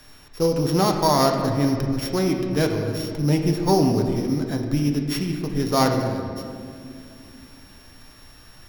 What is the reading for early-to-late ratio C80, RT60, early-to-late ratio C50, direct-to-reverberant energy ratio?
5.5 dB, 2.3 s, 4.5 dB, 2.0 dB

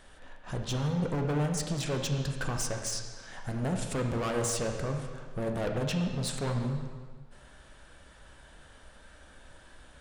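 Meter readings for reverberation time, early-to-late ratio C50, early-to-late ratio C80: 1.7 s, 5.0 dB, 6.5 dB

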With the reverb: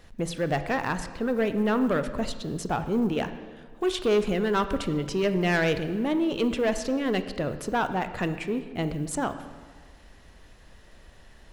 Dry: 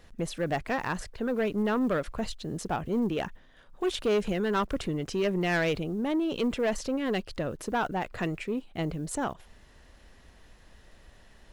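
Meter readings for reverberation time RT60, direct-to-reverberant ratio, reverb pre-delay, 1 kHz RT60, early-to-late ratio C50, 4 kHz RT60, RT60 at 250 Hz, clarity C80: 1.5 s, 10.0 dB, 26 ms, 1.5 s, 11.0 dB, 1.2 s, 1.7 s, 12.5 dB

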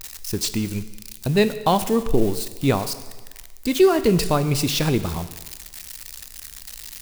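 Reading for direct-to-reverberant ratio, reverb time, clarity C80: 11.5 dB, 1.3 s, 14.5 dB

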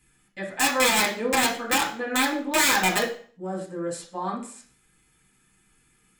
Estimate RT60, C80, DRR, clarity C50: 0.50 s, 13.0 dB, −4.5 dB, 8.5 dB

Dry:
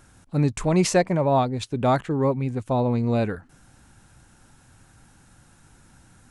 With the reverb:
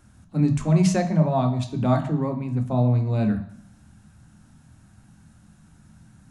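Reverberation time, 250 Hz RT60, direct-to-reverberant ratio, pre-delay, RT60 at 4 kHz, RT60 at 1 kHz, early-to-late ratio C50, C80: 0.70 s, 0.75 s, 4.5 dB, 3 ms, 0.65 s, 0.70 s, 10.5 dB, 14.0 dB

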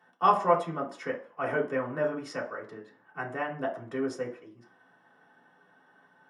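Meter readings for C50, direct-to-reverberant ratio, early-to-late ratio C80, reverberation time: 10.0 dB, −5.0 dB, 15.0 dB, 0.45 s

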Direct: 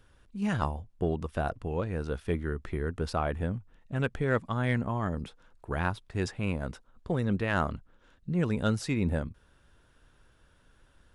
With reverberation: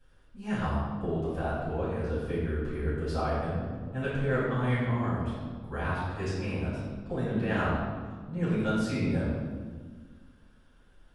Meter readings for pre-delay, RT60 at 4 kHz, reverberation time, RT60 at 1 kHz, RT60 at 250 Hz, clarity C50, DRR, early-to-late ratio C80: 5 ms, 1.1 s, 1.6 s, 1.4 s, 2.2 s, −1.5 dB, −11.5 dB, 1.0 dB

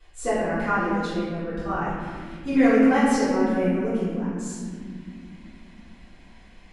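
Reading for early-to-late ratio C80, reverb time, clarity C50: 0.0 dB, non-exponential decay, −2.5 dB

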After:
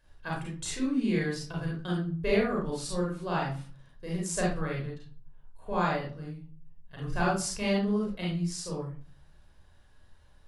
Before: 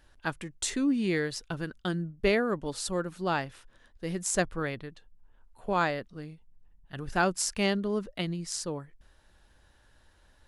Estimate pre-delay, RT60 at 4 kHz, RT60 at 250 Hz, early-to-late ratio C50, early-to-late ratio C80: 34 ms, 0.30 s, 0.60 s, 2.0 dB, 8.5 dB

